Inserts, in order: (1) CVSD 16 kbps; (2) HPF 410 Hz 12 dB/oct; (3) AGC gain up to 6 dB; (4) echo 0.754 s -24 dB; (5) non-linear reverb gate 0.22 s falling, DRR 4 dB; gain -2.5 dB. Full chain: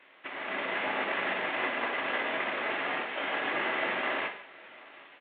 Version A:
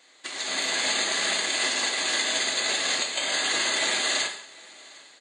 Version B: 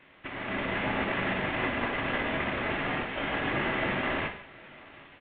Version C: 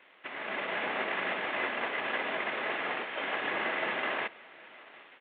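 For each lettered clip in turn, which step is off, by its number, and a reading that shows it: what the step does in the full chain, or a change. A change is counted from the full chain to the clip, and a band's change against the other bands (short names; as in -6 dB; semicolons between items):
1, 4 kHz band +15.5 dB; 2, 125 Hz band +18.0 dB; 5, momentary loudness spread change +3 LU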